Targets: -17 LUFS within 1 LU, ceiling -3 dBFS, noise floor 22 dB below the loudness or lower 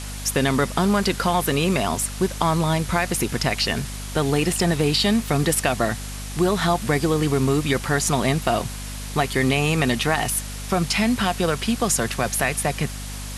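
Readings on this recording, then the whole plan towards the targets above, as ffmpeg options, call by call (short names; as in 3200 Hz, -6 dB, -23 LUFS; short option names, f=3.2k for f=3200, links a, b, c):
hum 50 Hz; harmonics up to 250 Hz; hum level -31 dBFS; noise floor -32 dBFS; noise floor target -44 dBFS; loudness -22.0 LUFS; peak -5.0 dBFS; loudness target -17.0 LUFS
-> -af "bandreject=f=50:t=h:w=6,bandreject=f=100:t=h:w=6,bandreject=f=150:t=h:w=6,bandreject=f=200:t=h:w=6,bandreject=f=250:t=h:w=6"
-af "afftdn=nr=12:nf=-32"
-af "volume=5dB,alimiter=limit=-3dB:level=0:latency=1"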